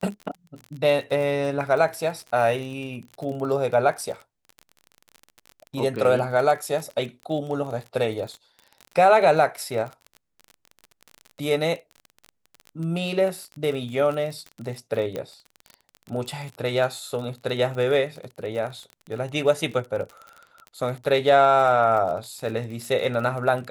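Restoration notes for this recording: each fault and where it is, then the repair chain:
surface crackle 32 per second −31 dBFS
0:15.16: click −17 dBFS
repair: click removal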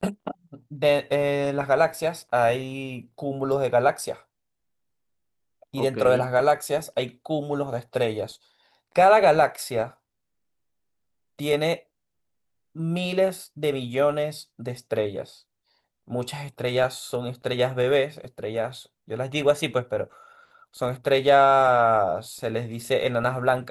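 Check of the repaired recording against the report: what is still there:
none of them is left

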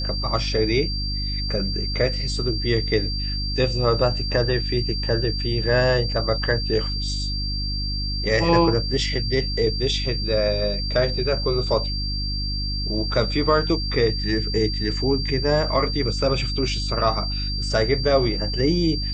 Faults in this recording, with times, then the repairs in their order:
mains hum 50 Hz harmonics 6 −27 dBFS
whistle 4,700 Hz −28 dBFS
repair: notch filter 4,700 Hz, Q 30
hum removal 50 Hz, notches 6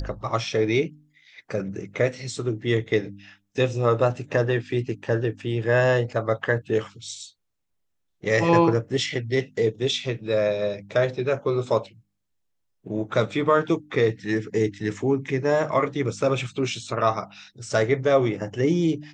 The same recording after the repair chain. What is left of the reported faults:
none of them is left

